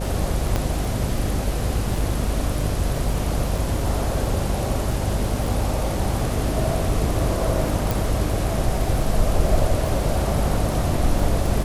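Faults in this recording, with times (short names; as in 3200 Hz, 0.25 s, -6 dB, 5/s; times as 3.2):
buzz 50 Hz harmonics 14 -26 dBFS
crackle 18/s -24 dBFS
0.56 pop -9 dBFS
3.58 gap 2.5 ms
7.91 pop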